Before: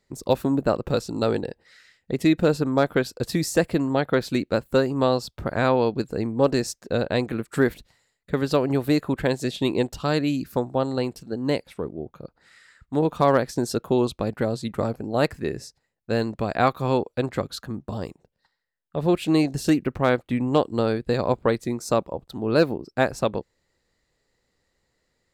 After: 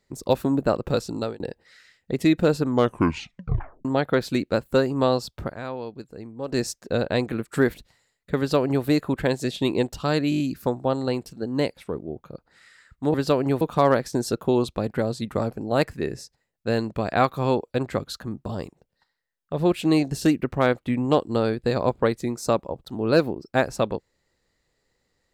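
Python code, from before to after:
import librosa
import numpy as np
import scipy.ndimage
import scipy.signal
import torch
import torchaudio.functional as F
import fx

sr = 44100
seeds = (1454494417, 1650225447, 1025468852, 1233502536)

y = fx.edit(x, sr, fx.fade_out_span(start_s=1.12, length_s=0.28),
    fx.tape_stop(start_s=2.67, length_s=1.18),
    fx.fade_down_up(start_s=5.43, length_s=1.16, db=-12.5, fade_s=0.12),
    fx.duplicate(start_s=8.38, length_s=0.47, to_s=13.04),
    fx.stutter(start_s=10.3, slice_s=0.02, count=6), tone=tone)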